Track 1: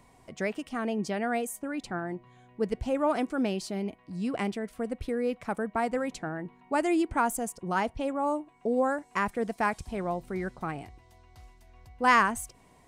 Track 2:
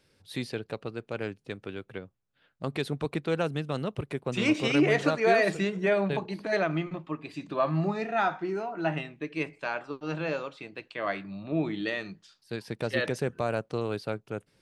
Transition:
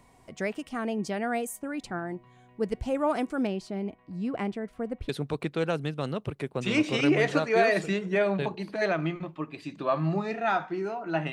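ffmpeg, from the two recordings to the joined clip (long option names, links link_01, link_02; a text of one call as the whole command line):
ffmpeg -i cue0.wav -i cue1.wav -filter_complex "[0:a]asettb=1/sr,asplit=3[link_01][link_02][link_03];[link_01]atrim=end=3.474[link_04];[link_02]atrim=start=3.47:end=5.09,asetpts=PTS-STARTPTS,afade=type=in:duration=0.004:curve=qsin,afade=type=out:start_time=1.616:duration=0.004:curve=qsin,lowpass=frequency=2100:poles=1[link_05];[link_03]atrim=start=5.086[link_06];[link_04][link_05]acrossfade=duration=0.004:curve1=hsin:curve2=qsin[link_07];[link_07][link_06]acrossfade=duration=0.004:curve1=qsin:curve2=hsin,apad=whole_dur=11.32,atrim=end=11.32,atrim=end=5.092[link_08];[1:a]atrim=start=2.798:end=9.03[link_09];[link_08][link_09]acrossfade=duration=0.004:curve1=hsin:curve2=hsin" out.wav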